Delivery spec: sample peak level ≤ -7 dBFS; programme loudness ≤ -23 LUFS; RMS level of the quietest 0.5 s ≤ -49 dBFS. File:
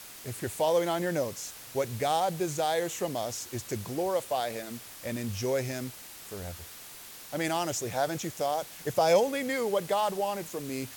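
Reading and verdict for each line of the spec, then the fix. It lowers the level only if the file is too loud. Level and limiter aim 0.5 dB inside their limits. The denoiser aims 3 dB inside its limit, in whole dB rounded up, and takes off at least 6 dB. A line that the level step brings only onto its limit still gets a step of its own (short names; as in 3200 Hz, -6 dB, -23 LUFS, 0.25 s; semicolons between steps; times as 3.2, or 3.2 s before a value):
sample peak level -12.5 dBFS: OK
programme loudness -30.5 LUFS: OK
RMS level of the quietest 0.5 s -47 dBFS: fail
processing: denoiser 6 dB, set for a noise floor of -47 dBFS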